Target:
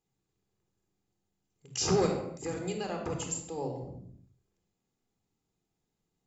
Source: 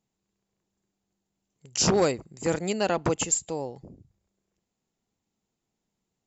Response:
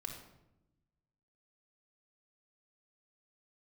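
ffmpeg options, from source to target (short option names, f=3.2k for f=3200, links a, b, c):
-filter_complex "[0:a]asettb=1/sr,asplit=3[a][b][c];[a]atrim=end=2.064[d];[b]atrim=start=2.06:end=3.58,asetpts=PTS-STARTPTS,afade=t=in:d=0.004:c=qsin,afade=t=out:st=1.516:d=0.004:c=qsin,acompressor=threshold=-36dB:ratio=2[e];[c]atrim=start=3.576[f];[d][e]acrossfade=d=0.004:c1=hsin:c2=qsin[g];[g][f]acrossfade=d=0.004:c1=qsin:c2=hsin,alimiter=limit=-18dB:level=0:latency=1:release=444[h];[1:a]atrim=start_sample=2205,afade=t=out:st=0.38:d=0.01,atrim=end_sample=17199[i];[h][i]afir=irnorm=-1:irlink=0"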